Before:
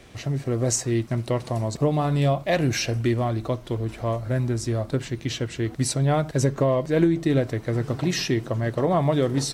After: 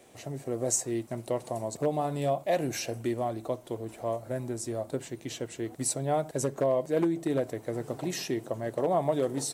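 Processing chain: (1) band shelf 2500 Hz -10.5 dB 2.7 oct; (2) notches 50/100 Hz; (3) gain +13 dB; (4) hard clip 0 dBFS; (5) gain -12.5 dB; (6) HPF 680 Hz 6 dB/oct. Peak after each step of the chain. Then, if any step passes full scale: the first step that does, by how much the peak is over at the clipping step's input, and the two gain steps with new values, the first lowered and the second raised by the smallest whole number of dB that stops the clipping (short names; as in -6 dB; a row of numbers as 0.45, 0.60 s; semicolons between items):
-9.0, -9.0, +4.0, 0.0, -12.5, -14.5 dBFS; step 3, 4.0 dB; step 3 +9 dB, step 5 -8.5 dB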